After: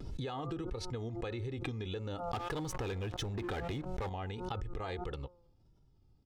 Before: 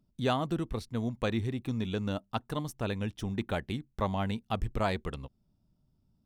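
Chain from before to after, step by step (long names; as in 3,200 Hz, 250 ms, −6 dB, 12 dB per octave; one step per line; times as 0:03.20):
low-pass filter 6,000 Hz 12 dB per octave
parametric band 520 Hz +2.5 dB
comb filter 2.4 ms, depth 64%
hum removal 177.2 Hz, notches 8
0:02.29–0:04.10: leveller curve on the samples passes 3
brickwall limiter −24.5 dBFS, peak gain reduction 9 dB
downward compressor 5 to 1, threshold −39 dBFS, peak gain reduction 10.5 dB
pitch vibrato 1.6 Hz 68 cents
background raised ahead of every attack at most 37 dB per second
level +2 dB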